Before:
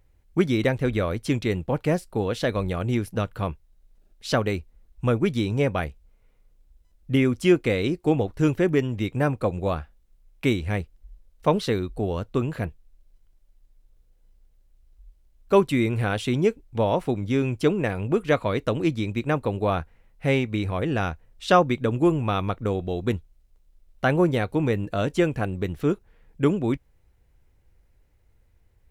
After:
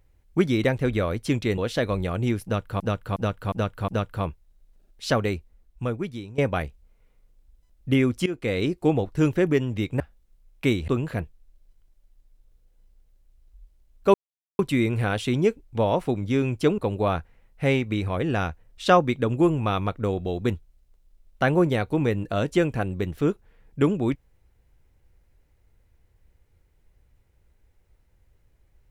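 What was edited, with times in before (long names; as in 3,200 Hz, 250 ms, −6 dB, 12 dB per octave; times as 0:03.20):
0:01.58–0:02.24: remove
0:03.10–0:03.46: repeat, 5 plays
0:04.50–0:05.60: fade out, to −17.5 dB
0:07.48–0:07.82: fade in, from −18.5 dB
0:09.22–0:09.80: remove
0:10.68–0:12.33: remove
0:15.59: splice in silence 0.45 s
0:17.78–0:19.40: remove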